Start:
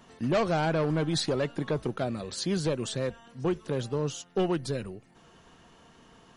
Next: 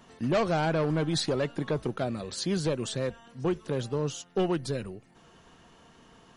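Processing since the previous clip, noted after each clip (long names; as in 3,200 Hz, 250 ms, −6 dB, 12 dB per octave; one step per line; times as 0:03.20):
no processing that can be heard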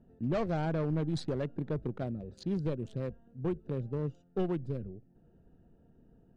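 adaptive Wiener filter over 41 samples
spectral tilt −2 dB per octave
level −7.5 dB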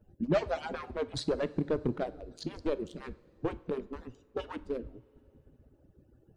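harmonic-percussive split with one part muted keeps percussive
coupled-rooms reverb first 0.46 s, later 3.2 s, from −18 dB, DRR 13.5 dB
level +6 dB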